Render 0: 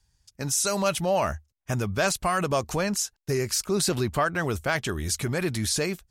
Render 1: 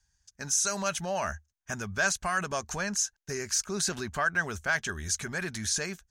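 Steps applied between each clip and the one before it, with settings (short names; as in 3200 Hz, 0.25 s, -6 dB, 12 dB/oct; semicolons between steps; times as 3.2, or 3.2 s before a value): thirty-one-band EQ 125 Hz -10 dB, 315 Hz -9 dB, 500 Hz -6 dB, 1600 Hz +10 dB, 6300 Hz +10 dB, 12500 Hz -9 dB; gain -6 dB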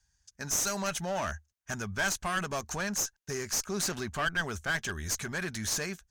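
one-sided clip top -32 dBFS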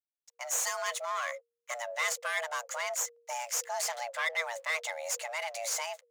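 backlash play -51 dBFS; frequency shift +470 Hz; gain -1.5 dB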